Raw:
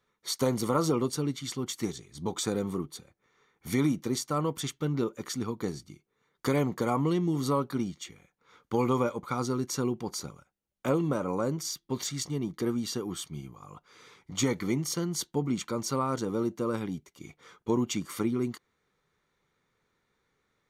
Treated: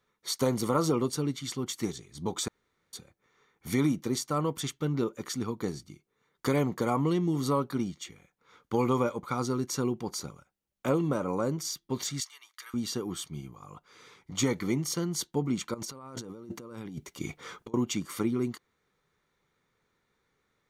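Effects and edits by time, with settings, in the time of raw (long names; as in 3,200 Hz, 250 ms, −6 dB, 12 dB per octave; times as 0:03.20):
0:02.48–0:02.93: fill with room tone
0:12.20–0:12.74: high-pass filter 1,300 Hz 24 dB per octave
0:15.74–0:17.74: compressor whose output falls as the input rises −42 dBFS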